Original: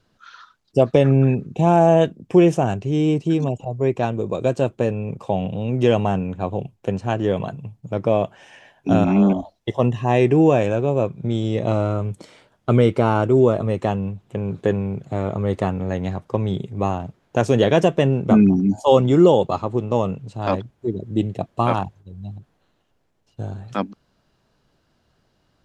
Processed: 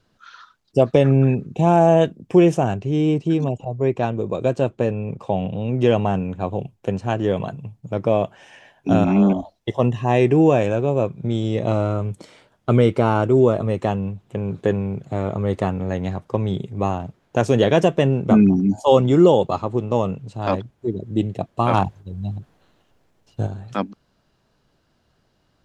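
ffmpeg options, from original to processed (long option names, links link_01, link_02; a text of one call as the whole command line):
ffmpeg -i in.wav -filter_complex "[0:a]asettb=1/sr,asplit=3[link_01][link_02][link_03];[link_01]atrim=end=2.684[link_04];[link_02]atrim=start=2.68:end=6.14,asetpts=PTS-STARTPTS,afade=type=in:duration=0.004:curve=qsin,afade=type=out:start_time=3.456:duration=0.004:curve=qsin,highshelf=frequency=7300:gain=-8.5[link_05];[link_03]atrim=start=6.136[link_06];[link_04][link_05]acrossfade=duration=0.004:curve1=hsin:curve2=qsin[link_07];[link_07][link_06]acrossfade=duration=0.004:curve1=qsin:curve2=hsin,asettb=1/sr,asplit=3[link_08][link_09][link_10];[link_08]atrim=end=21.734[link_11];[link_09]atrim=start=21.73:end=23.47,asetpts=PTS-STARTPTS,afade=type=in:duration=0.004:curve=qsin,afade=type=out:start_time=1.736:duration=0.004:curve=qsin,acontrast=57[link_12];[link_10]atrim=start=23.466[link_13];[link_11][link_12]acrossfade=duration=0.004:curve1=hsin:curve2=qsin[link_14];[link_14][link_13]acrossfade=duration=0.004:curve1=qsin:curve2=hsin" out.wav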